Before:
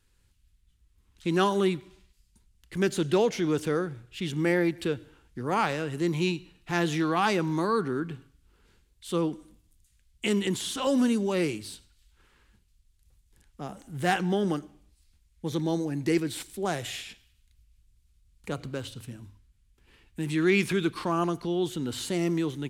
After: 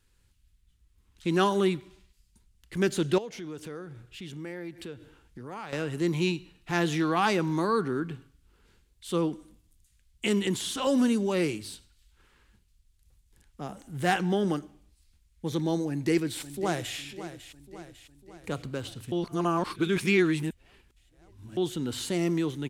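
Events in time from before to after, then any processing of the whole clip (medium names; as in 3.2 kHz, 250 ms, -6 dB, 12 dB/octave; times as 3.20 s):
3.18–5.73 s: compression 2.5:1, threshold -42 dBFS
15.88–16.97 s: echo throw 550 ms, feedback 55%, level -13 dB
19.12–21.57 s: reverse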